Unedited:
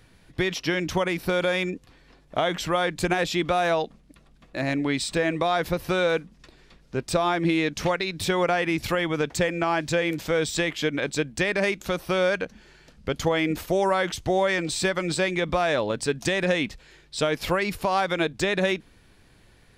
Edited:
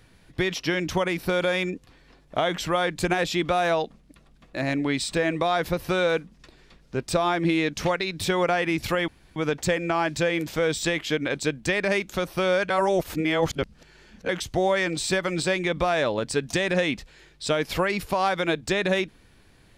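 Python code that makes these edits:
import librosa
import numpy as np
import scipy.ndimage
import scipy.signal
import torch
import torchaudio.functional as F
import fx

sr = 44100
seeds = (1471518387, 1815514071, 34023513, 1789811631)

y = fx.edit(x, sr, fx.insert_room_tone(at_s=9.08, length_s=0.28),
    fx.reverse_span(start_s=12.42, length_s=1.59), tone=tone)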